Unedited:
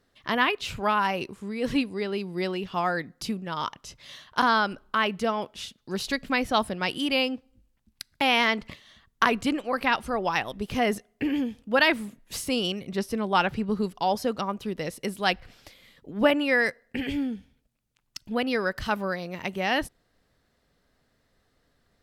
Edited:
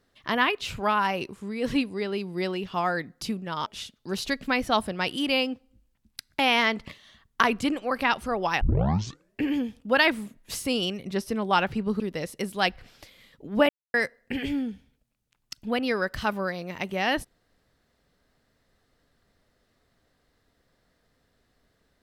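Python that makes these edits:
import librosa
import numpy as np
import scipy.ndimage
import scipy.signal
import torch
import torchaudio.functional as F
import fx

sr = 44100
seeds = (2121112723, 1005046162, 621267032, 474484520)

y = fx.edit(x, sr, fx.cut(start_s=3.66, length_s=1.82),
    fx.tape_start(start_s=10.43, length_s=0.79),
    fx.cut(start_s=13.82, length_s=0.82),
    fx.silence(start_s=16.33, length_s=0.25), tone=tone)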